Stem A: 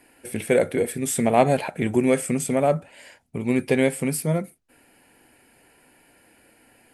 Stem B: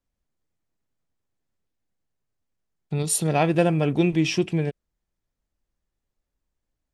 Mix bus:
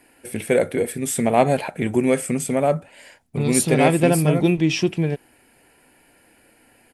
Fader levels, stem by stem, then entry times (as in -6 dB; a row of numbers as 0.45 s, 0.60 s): +1.0 dB, +2.5 dB; 0.00 s, 0.45 s